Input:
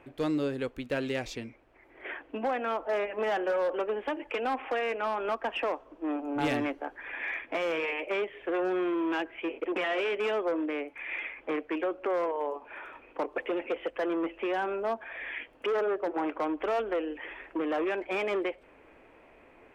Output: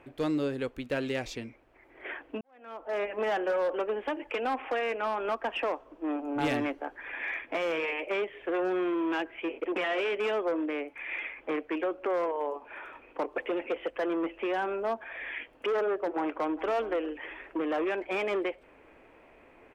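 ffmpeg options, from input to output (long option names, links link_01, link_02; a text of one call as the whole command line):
ffmpeg -i in.wav -filter_complex "[0:a]asplit=2[link_01][link_02];[link_02]afade=type=in:start_time=16.08:duration=0.01,afade=type=out:start_time=16.68:duration=0.01,aecho=0:1:410|820:0.158489|0.0396223[link_03];[link_01][link_03]amix=inputs=2:normalize=0,asplit=2[link_04][link_05];[link_04]atrim=end=2.41,asetpts=PTS-STARTPTS,afade=type=out:start_time=2.406:duration=0.004:curve=hsin[link_06];[link_05]atrim=start=2.41,asetpts=PTS-STARTPTS,afade=type=in:duration=0.62:curve=qua[link_07];[link_06][link_07]concat=n=2:v=0:a=1" out.wav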